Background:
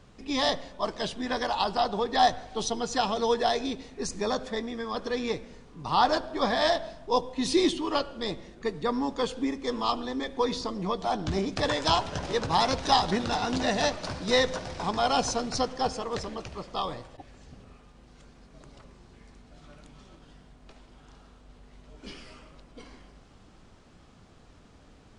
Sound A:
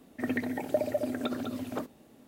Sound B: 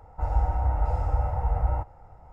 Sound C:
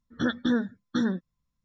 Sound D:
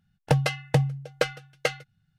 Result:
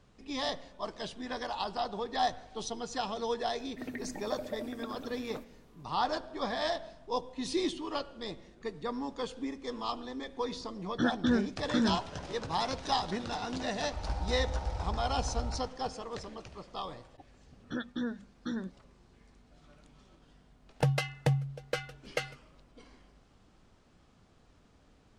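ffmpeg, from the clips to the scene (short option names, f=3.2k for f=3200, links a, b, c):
-filter_complex "[3:a]asplit=2[a][b];[0:a]volume=-8dB[c];[2:a]aecho=1:1:114:0.708[d];[b]bandreject=f=50:t=h:w=6,bandreject=f=100:t=h:w=6,bandreject=f=150:t=h:w=6,bandreject=f=200:t=h:w=6[e];[4:a]alimiter=level_in=10.5dB:limit=-1dB:release=50:level=0:latency=1[f];[1:a]atrim=end=2.27,asetpts=PTS-STARTPTS,volume=-9.5dB,afade=t=in:d=0.004:c=hsin,afade=t=out:st=2.266:d=0.004:c=hsin,adelay=3580[g];[a]atrim=end=1.64,asetpts=PTS-STARTPTS,volume=-2.5dB,afade=t=in:d=0.004:c=hsin,afade=t=out:st=1.636:d=0.004:c=hsin,adelay=10790[h];[d]atrim=end=2.32,asetpts=PTS-STARTPTS,volume=-12.5dB,afade=t=in:d=0.004:c=hsin,afade=t=out:st=2.316:d=0.004:c=hsin,adelay=13740[i];[e]atrim=end=1.64,asetpts=PTS-STARTPTS,volume=-10dB,afade=t=in:d=0.004:c=hsin,afade=t=out:st=1.636:d=0.004:c=hsin,adelay=17510[j];[f]atrim=end=2.18,asetpts=PTS-STARTPTS,volume=-14.5dB,afade=t=in:d=0.004:c=hsin,afade=t=out:st=2.176:d=0.004:c=hsin,adelay=904932S[k];[c][g][h][i][j][k]amix=inputs=6:normalize=0"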